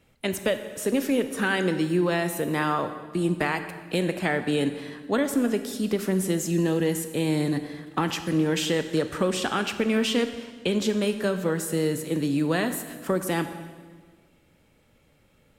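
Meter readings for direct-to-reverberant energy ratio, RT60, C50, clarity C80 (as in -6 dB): 8.5 dB, 1.6 s, 10.0 dB, 11.0 dB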